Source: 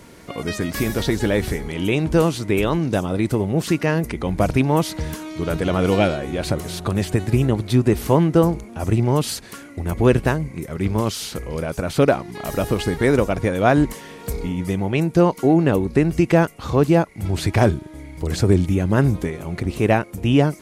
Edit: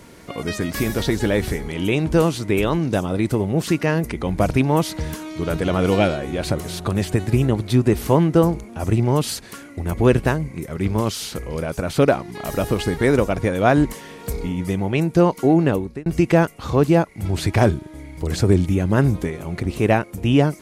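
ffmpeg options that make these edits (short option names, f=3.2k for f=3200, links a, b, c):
-filter_complex "[0:a]asplit=2[a][b];[a]atrim=end=16.06,asetpts=PTS-STARTPTS,afade=t=out:st=15.65:d=0.41[c];[b]atrim=start=16.06,asetpts=PTS-STARTPTS,afade=t=in:d=0.004:c=hsin[d];[c][d]concat=n=2:v=0:a=1"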